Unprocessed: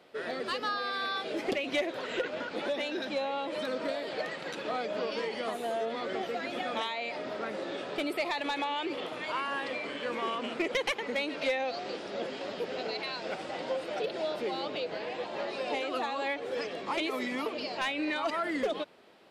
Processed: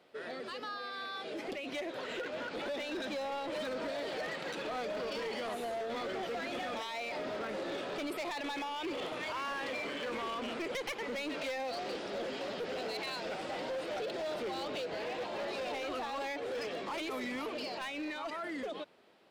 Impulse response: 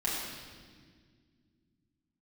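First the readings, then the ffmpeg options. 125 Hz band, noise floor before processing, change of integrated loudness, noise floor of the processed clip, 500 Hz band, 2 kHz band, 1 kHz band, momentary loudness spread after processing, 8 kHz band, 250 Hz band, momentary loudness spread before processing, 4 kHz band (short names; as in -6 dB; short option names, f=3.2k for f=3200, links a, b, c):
-2.0 dB, -41 dBFS, -4.5 dB, -43 dBFS, -4.5 dB, -5.0 dB, -4.5 dB, 2 LU, -1.0 dB, -4.5 dB, 5 LU, -4.5 dB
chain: -af "alimiter=level_in=4dB:limit=-24dB:level=0:latency=1:release=18,volume=-4dB,dynaudnorm=f=490:g=9:m=5.5dB,volume=28.5dB,asoftclip=hard,volume=-28.5dB,volume=-5.5dB"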